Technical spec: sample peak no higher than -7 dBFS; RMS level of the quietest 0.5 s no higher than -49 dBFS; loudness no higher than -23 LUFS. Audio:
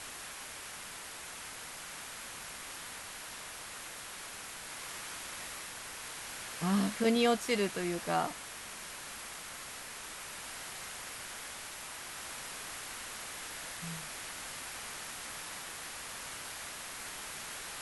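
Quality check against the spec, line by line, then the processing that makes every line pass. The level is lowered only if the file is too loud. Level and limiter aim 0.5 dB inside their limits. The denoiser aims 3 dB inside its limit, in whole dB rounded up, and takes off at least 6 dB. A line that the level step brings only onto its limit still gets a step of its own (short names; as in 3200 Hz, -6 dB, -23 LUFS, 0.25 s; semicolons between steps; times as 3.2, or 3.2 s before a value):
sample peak -17.5 dBFS: OK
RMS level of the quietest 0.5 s -46 dBFS: fail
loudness -38.5 LUFS: OK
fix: denoiser 6 dB, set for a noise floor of -46 dBFS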